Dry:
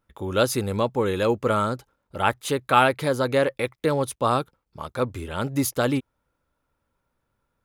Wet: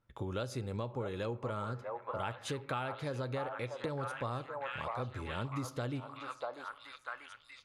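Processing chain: low-pass 7.3 kHz 12 dB/octave; peaking EQ 120 Hz +10.5 dB 0.35 oct; repeats whose band climbs or falls 642 ms, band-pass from 850 Hz, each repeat 0.7 oct, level -3 dB; on a send at -15 dB: reverberation RT60 0.60 s, pre-delay 15 ms; on the sum: compression 6:1, threshold -31 dBFS, peak gain reduction 17.5 dB; trim -4.5 dB

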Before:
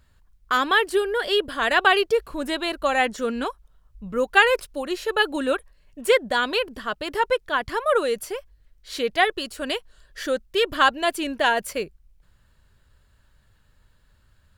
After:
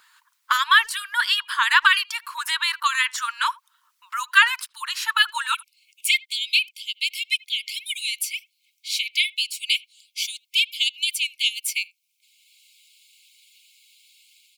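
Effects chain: harmonic-percussive split harmonic -10 dB; level rider gain up to 5.5 dB; brick-wall FIR high-pass 880 Hz, from 5.53 s 2.1 kHz; speakerphone echo 80 ms, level -26 dB; three bands compressed up and down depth 40%; trim +4 dB

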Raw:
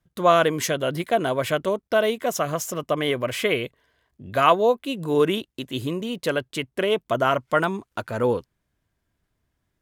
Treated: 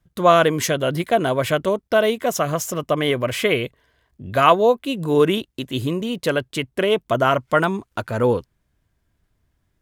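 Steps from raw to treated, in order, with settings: bass shelf 110 Hz +7 dB; trim +3 dB

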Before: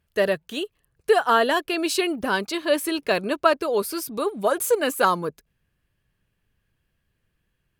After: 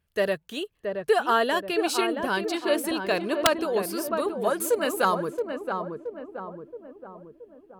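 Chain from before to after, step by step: filtered feedback delay 674 ms, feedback 55%, low-pass 1.1 kHz, level -4.5 dB; integer overflow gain 6.5 dB; trim -3.5 dB

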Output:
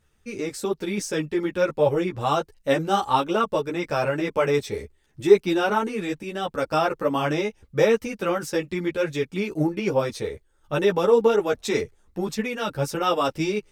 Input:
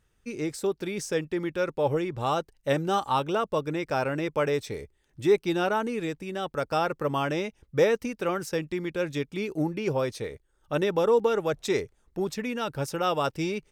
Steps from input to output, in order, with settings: three-phase chorus; trim +7 dB

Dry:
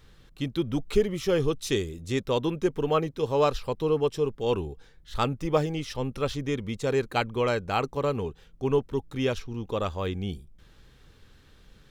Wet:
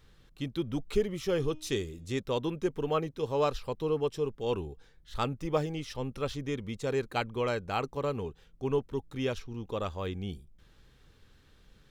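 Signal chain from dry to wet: 1.36–2.06 s: de-hum 309.3 Hz, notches 27; trim -5 dB

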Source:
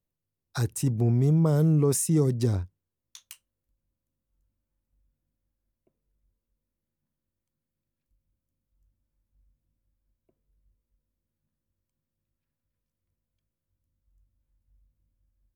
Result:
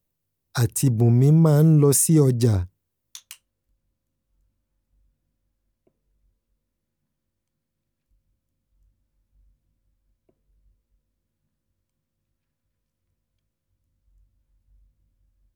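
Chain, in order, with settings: treble shelf 11 kHz +7 dB, from 3.20 s -5.5 dB; trim +6 dB

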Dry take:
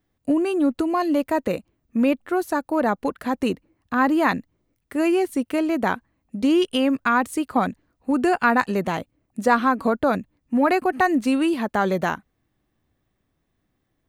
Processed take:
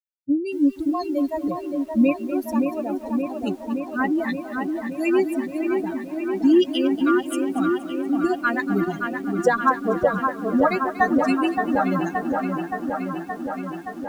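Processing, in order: expander on every frequency bin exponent 3; rotary cabinet horn 0.75 Hz, later 6.3 Hz, at 8.96 s; on a send: feedback echo behind a low-pass 572 ms, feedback 75%, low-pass 2 kHz, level -4.5 dB; on the sum: bit-crushed delay 237 ms, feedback 55%, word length 8-bit, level -14 dB; trim +6.5 dB

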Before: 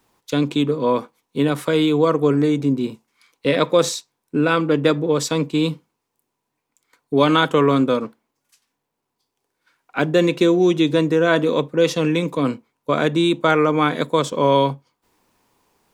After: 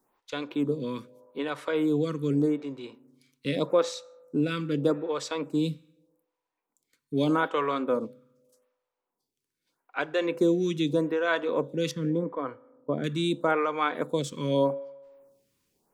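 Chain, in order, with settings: 11.91–13.04 s: Savitzky-Golay filter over 41 samples; on a send at -20 dB: reverberation RT60 1.2 s, pre-delay 3 ms; on the sum: lamp-driven phase shifter 0.82 Hz; trim -6.5 dB

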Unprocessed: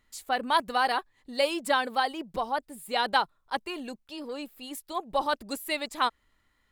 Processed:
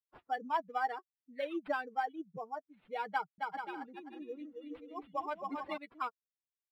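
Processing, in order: expander on every frequency bin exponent 2; high-pass 120 Hz 24 dB/octave; treble shelf 5.8 kHz -11 dB; comb 6.4 ms, depth 45%; sample-and-hold 7×; distance through air 460 m; 3.11–5.78 s: bouncing-ball echo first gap 270 ms, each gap 0.6×, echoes 5; trim -4 dB

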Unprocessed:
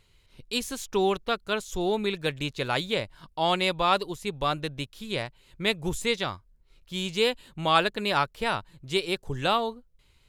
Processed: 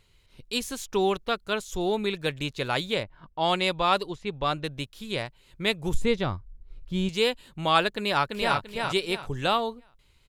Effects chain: 3.03–4.64 s: level-controlled noise filter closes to 1.6 kHz, open at -19.5 dBFS; 5.94–7.09 s: tilt EQ -3 dB/octave; 7.95–8.58 s: echo throw 340 ms, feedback 30%, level -3 dB

